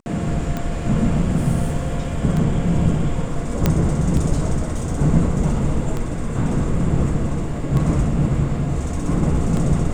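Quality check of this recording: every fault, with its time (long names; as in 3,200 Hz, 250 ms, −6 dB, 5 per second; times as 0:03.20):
scratch tick 33 1/3 rpm −12 dBFS
0:03.66: click −3 dBFS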